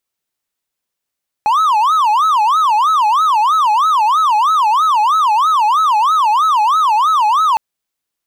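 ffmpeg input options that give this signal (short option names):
-f lavfi -i "aevalsrc='0.422*(1-4*abs(mod((1068.5*t-231.5/(2*PI*3.1)*sin(2*PI*3.1*t))+0.25,1)-0.5))':d=6.11:s=44100"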